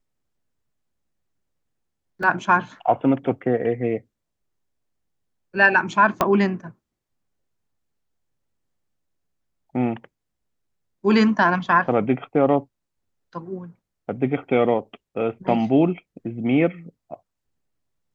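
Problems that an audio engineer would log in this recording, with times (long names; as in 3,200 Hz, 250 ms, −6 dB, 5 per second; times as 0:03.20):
0:02.23: drop-out 2.6 ms
0:06.21: click −5 dBFS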